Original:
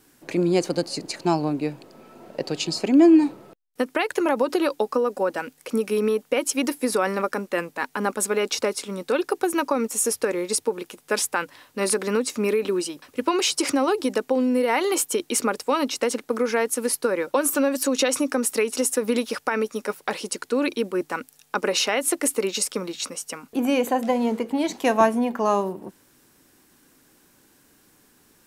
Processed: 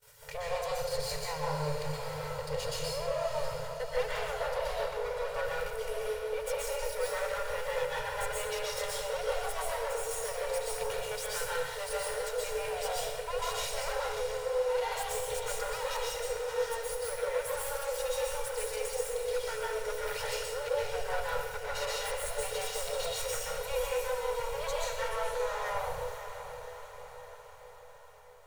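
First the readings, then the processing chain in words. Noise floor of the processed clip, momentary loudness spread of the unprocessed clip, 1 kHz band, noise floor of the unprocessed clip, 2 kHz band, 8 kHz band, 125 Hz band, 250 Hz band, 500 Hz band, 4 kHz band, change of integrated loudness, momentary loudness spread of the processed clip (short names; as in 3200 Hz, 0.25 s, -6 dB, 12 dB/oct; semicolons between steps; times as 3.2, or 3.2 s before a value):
-49 dBFS, 8 LU, -8.5 dB, -60 dBFS, -8.0 dB, -11.5 dB, n/a, under -30 dB, -8.5 dB, -8.0 dB, -10.5 dB, 4 LU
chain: minimum comb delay 2.1 ms; FFT band-reject 160–430 Hz; reverse; compressor, threshold -36 dBFS, peak gain reduction 18 dB; reverse; limiter -31 dBFS, peak gain reduction 8.5 dB; vocal rider within 5 dB 0.5 s; gate -57 dBFS, range -21 dB; on a send: diffused feedback echo 0.591 s, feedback 60%, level -9.5 dB; on the sum: plate-style reverb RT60 0.95 s, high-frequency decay 0.8×, pre-delay 0.11 s, DRR -5 dB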